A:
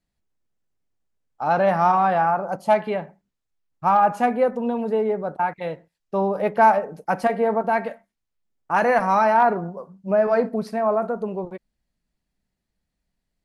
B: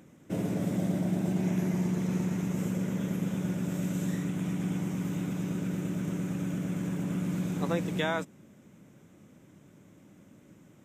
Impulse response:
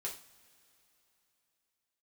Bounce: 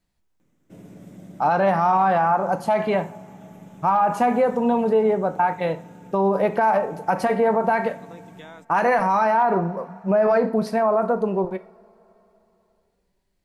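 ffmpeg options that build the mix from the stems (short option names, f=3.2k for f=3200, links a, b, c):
-filter_complex "[0:a]equalizer=f=950:t=o:w=0.36:g=3,volume=2.5dB,asplit=2[a][b];[b]volume=-6dB[c];[1:a]adelay=400,volume=-13dB[d];[2:a]atrim=start_sample=2205[e];[c][e]afir=irnorm=-1:irlink=0[f];[a][d][f]amix=inputs=3:normalize=0,alimiter=limit=-11dB:level=0:latency=1:release=65"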